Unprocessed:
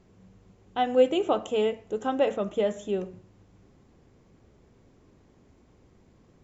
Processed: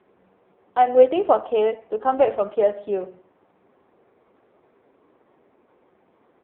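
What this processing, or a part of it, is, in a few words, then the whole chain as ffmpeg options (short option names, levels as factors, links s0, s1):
telephone: -af "highpass=310,lowpass=3100,firequalizer=gain_entry='entry(200,0);entry(720,7);entry(1800,4);entry(3300,-1);entry(5000,15);entry(8100,5)':delay=0.05:min_phase=1,volume=1.5" -ar 8000 -c:a libopencore_amrnb -b:a 5900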